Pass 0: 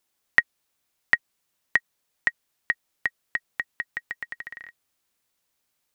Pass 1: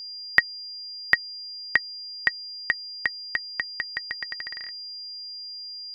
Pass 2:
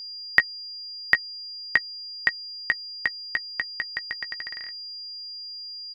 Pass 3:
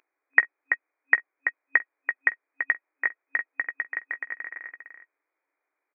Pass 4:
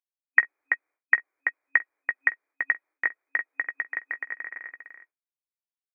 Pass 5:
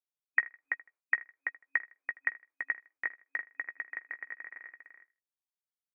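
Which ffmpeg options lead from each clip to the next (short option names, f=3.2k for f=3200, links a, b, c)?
-af "aeval=exprs='val(0)+0.0158*sin(2*PI*4800*n/s)':c=same,volume=1dB"
-filter_complex "[0:a]asplit=2[a][b];[b]adelay=16,volume=-12.5dB[c];[a][c]amix=inputs=2:normalize=0"
-af "aecho=1:1:47|335:0.1|0.447,afftfilt=real='re*between(b*sr/4096,270,2500)':imag='im*between(b*sr/4096,270,2500)':win_size=4096:overlap=0.75"
-filter_complex "[0:a]agate=range=-33dB:threshold=-49dB:ratio=3:detection=peak,acrossover=split=980[a][b];[a]alimiter=limit=-23dB:level=0:latency=1:release=70[c];[c][b]amix=inputs=2:normalize=0"
-af "aecho=1:1:79|158:0.0891|0.0276,volume=-8.5dB"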